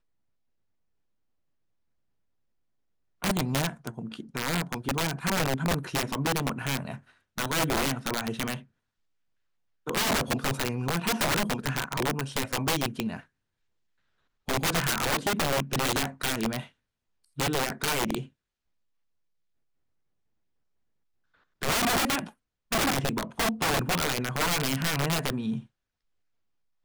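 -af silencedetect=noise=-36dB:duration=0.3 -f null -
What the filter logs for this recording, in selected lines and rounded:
silence_start: 0.00
silence_end: 3.22 | silence_duration: 3.22
silence_start: 6.96
silence_end: 7.38 | silence_duration: 0.41
silence_start: 8.59
silence_end: 9.87 | silence_duration: 1.28
silence_start: 13.20
silence_end: 14.48 | silence_duration: 1.29
silence_start: 16.64
silence_end: 17.38 | silence_duration: 0.74
silence_start: 18.23
silence_end: 21.62 | silence_duration: 3.39
silence_start: 22.29
silence_end: 22.72 | silence_duration: 0.43
silence_start: 25.60
silence_end: 26.85 | silence_duration: 1.25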